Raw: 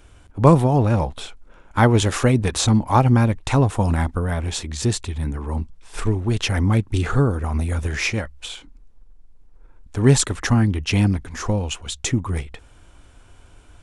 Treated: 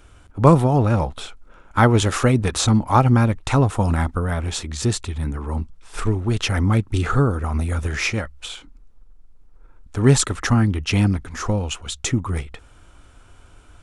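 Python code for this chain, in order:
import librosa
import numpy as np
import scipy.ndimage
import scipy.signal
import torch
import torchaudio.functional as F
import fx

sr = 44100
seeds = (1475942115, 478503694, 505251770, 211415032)

y = fx.peak_eq(x, sr, hz=1300.0, db=6.5, octaves=0.23)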